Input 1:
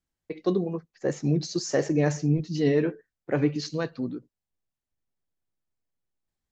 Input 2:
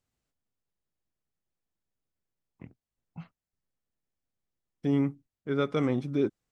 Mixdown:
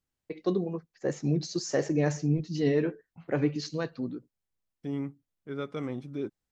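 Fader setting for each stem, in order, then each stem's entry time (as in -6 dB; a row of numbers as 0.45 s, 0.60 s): -3.0 dB, -7.5 dB; 0.00 s, 0.00 s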